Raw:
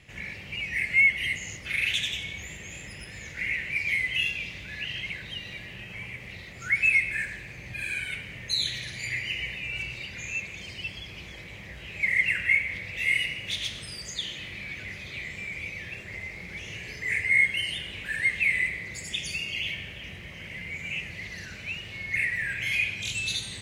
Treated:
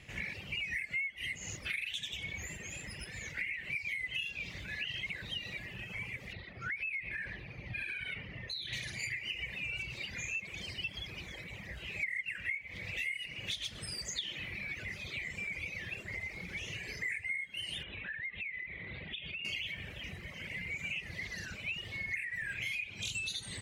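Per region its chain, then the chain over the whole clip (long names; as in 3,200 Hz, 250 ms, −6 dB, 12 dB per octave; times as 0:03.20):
0:06.33–0:08.73: downward compressor 10 to 1, threshold −30 dBFS + gain into a clipping stage and back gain 27.5 dB + moving average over 6 samples
0:17.83–0:19.45: Butterworth low-pass 3,900 Hz 96 dB per octave + downward compressor 10 to 1, threshold −36 dBFS
whole clip: downward compressor 12 to 1, threshold −33 dBFS; reverb reduction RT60 1.5 s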